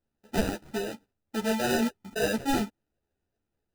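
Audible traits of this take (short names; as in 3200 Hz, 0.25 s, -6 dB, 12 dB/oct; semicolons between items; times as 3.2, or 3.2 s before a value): aliases and images of a low sample rate 1100 Hz, jitter 0%; a shimmering, thickened sound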